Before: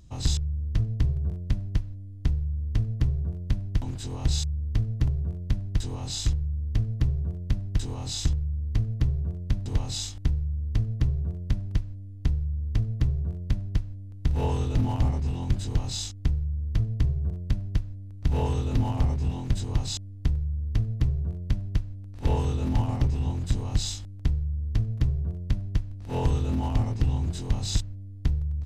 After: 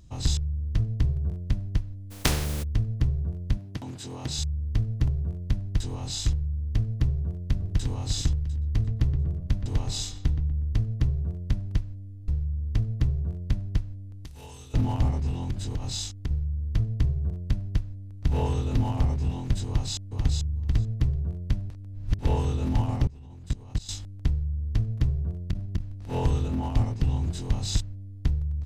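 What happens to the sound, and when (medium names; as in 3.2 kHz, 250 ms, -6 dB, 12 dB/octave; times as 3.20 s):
2.10–2.62 s: spectral contrast reduction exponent 0.41
3.57–4.39 s: high-pass 150 Hz
7.18–7.86 s: echo throw 350 ms, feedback 30%, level -5 dB
8.45–10.73 s: filtered feedback delay 121 ms, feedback 46%, level -9 dB
12.22 s: stutter in place 0.02 s, 3 plays
14.25–14.74 s: pre-emphasis filter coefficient 0.9
15.37–16.31 s: compression, threshold -25 dBFS
19.67–20.32 s: echo throw 440 ms, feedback 10%, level -4 dB
21.70–22.19 s: reverse
23.07–23.89 s: level held to a coarse grid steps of 22 dB
25.39–25.83 s: transformer saturation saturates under 100 Hz
26.48–27.02 s: three bands expanded up and down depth 70%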